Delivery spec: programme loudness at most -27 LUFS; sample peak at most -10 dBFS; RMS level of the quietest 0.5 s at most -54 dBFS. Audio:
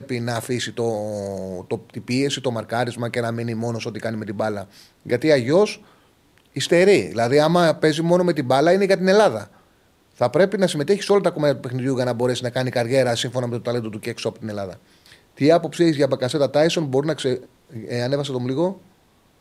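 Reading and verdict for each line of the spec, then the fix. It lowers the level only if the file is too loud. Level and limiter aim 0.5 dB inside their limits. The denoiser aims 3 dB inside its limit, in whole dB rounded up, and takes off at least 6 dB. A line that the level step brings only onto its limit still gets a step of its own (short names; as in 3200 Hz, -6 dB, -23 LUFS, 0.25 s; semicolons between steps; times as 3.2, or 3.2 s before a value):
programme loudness -21.0 LUFS: fail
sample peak -4.5 dBFS: fail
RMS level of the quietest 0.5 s -58 dBFS: OK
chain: gain -6.5 dB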